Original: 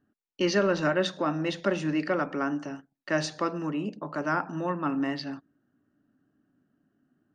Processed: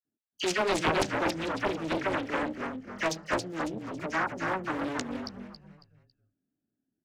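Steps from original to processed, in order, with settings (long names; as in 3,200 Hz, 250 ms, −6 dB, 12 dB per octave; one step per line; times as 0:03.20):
adaptive Wiener filter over 41 samples
noise gate −58 dBFS, range −10 dB
spectral tilt +2.5 dB per octave
notch filter 3,500 Hz, Q 6.5
all-pass dispersion lows, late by 53 ms, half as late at 1,800 Hz
echo with shifted repeats 287 ms, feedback 34%, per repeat −43 Hz, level −3.5 dB
wrong playback speed 24 fps film run at 25 fps
highs frequency-modulated by the lows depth 0.83 ms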